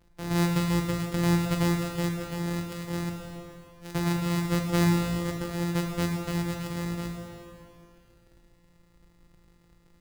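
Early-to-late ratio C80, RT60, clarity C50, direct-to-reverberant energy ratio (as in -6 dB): 3.5 dB, 2.6 s, 2.5 dB, 1.0 dB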